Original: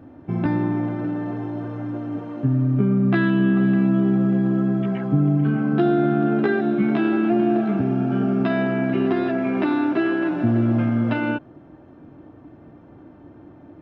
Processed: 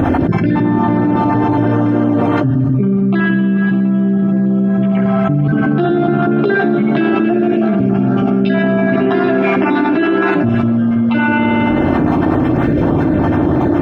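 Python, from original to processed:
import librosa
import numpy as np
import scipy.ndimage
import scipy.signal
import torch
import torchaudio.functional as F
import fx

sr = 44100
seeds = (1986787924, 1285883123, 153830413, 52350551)

y = fx.spec_dropout(x, sr, seeds[0], share_pct=24)
y = fx.rev_spring(y, sr, rt60_s=1.1, pass_ms=(56,), chirp_ms=65, drr_db=5.5)
y = fx.env_flatten(y, sr, amount_pct=100)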